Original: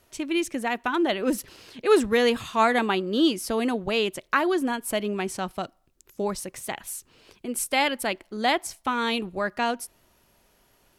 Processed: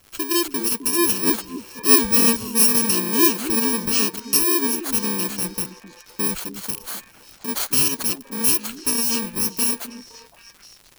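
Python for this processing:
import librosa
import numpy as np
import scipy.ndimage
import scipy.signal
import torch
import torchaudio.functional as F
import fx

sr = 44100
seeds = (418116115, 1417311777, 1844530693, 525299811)

y = fx.bit_reversed(x, sr, seeds[0], block=64)
y = fx.echo_stepped(y, sr, ms=259, hz=260.0, octaves=1.4, feedback_pct=70, wet_db=-7.5)
y = fx.dmg_crackle(y, sr, seeds[1], per_s=140.0, level_db=-38.0)
y = F.gain(torch.from_numpy(y), 4.5).numpy()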